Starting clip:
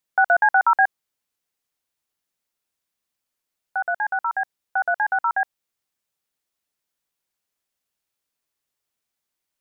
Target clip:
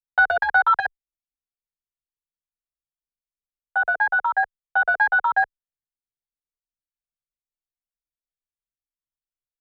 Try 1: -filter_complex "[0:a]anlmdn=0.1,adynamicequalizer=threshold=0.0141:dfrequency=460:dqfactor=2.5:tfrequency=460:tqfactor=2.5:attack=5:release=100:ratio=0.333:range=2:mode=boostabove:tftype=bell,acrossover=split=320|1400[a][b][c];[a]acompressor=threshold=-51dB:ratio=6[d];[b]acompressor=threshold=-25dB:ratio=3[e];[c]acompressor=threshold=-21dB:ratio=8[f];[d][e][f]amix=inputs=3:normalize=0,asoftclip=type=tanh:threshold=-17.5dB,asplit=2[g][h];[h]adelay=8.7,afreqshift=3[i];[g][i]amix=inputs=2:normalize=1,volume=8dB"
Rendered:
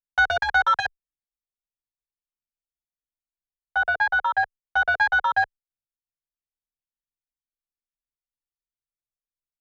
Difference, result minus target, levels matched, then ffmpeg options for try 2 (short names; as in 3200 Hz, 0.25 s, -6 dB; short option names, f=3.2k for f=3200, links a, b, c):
soft clip: distortion +11 dB
-filter_complex "[0:a]anlmdn=0.1,adynamicequalizer=threshold=0.0141:dfrequency=460:dqfactor=2.5:tfrequency=460:tqfactor=2.5:attack=5:release=100:ratio=0.333:range=2:mode=boostabove:tftype=bell,acrossover=split=320|1400[a][b][c];[a]acompressor=threshold=-51dB:ratio=6[d];[b]acompressor=threshold=-25dB:ratio=3[e];[c]acompressor=threshold=-21dB:ratio=8[f];[d][e][f]amix=inputs=3:normalize=0,asoftclip=type=tanh:threshold=-10dB,asplit=2[g][h];[h]adelay=8.7,afreqshift=3[i];[g][i]amix=inputs=2:normalize=1,volume=8dB"